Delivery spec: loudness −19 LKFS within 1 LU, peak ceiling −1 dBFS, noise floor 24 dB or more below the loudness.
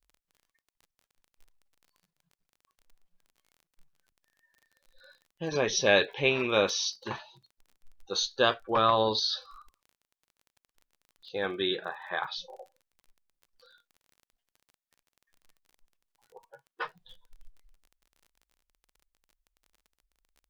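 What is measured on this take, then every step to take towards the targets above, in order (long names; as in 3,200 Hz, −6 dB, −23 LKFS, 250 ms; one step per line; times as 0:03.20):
crackle rate 27 per second; integrated loudness −28.5 LKFS; sample peak −8.0 dBFS; target loudness −19.0 LKFS
→ click removal
level +9.5 dB
brickwall limiter −1 dBFS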